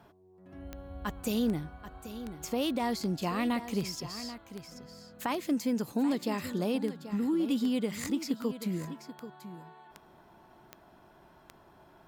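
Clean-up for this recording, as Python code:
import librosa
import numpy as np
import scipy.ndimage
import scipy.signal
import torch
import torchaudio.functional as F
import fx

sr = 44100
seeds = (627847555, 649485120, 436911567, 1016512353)

y = fx.fix_declick_ar(x, sr, threshold=10.0)
y = fx.fix_echo_inverse(y, sr, delay_ms=784, level_db=-12.5)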